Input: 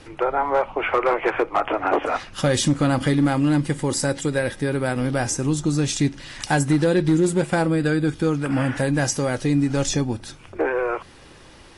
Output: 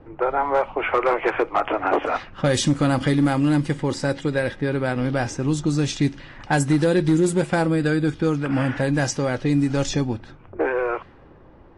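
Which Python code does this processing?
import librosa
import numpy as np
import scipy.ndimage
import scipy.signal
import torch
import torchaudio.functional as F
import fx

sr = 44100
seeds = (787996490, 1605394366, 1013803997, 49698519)

y = fx.env_lowpass(x, sr, base_hz=850.0, full_db=-14.5)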